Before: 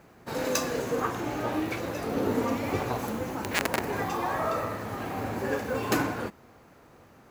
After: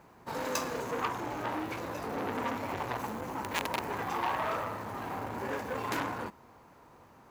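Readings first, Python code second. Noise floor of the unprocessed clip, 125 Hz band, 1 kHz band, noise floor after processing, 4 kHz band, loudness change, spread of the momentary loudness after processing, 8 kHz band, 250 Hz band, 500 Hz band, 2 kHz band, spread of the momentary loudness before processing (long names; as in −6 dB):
−55 dBFS, −7.5 dB, −1.5 dB, −58 dBFS, −4.5 dB, −5.0 dB, 5 LU, −7.0 dB, −8.0 dB, −7.0 dB, −4.5 dB, 6 LU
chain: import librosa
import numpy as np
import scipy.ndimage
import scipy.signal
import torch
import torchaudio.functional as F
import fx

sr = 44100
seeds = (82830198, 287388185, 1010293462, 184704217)

y = fx.peak_eq(x, sr, hz=960.0, db=9.5, octaves=0.4)
y = fx.transformer_sat(y, sr, knee_hz=3600.0)
y = y * 10.0 ** (-4.0 / 20.0)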